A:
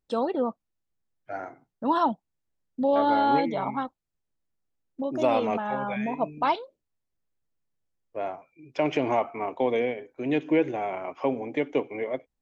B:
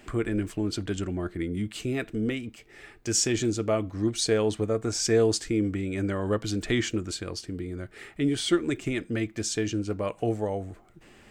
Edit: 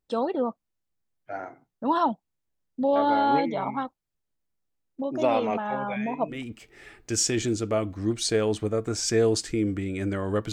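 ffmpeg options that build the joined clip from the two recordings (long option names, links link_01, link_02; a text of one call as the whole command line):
ffmpeg -i cue0.wav -i cue1.wav -filter_complex "[0:a]apad=whole_dur=10.52,atrim=end=10.52,atrim=end=6.43,asetpts=PTS-STARTPTS[link_01];[1:a]atrim=start=2.24:end=6.49,asetpts=PTS-STARTPTS[link_02];[link_01][link_02]acrossfade=duration=0.16:curve1=tri:curve2=tri" out.wav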